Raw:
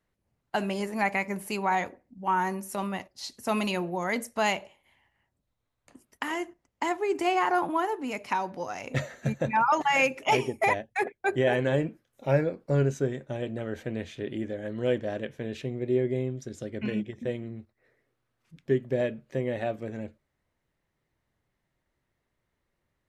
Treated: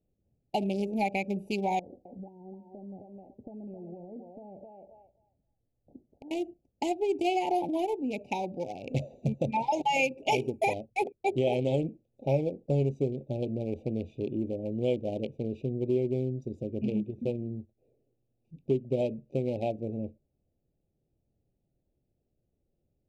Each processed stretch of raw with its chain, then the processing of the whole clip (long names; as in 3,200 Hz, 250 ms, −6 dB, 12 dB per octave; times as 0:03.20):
0:01.79–0:06.31: Butterworth low-pass 1,500 Hz + feedback echo with a high-pass in the loop 261 ms, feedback 21%, high-pass 870 Hz, level −3.5 dB + downward compressor 20 to 1, threshold −40 dBFS
whole clip: adaptive Wiener filter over 41 samples; Chebyshev band-stop filter 850–2,300 Hz, order 4; downward compressor 2 to 1, threshold −31 dBFS; level +4 dB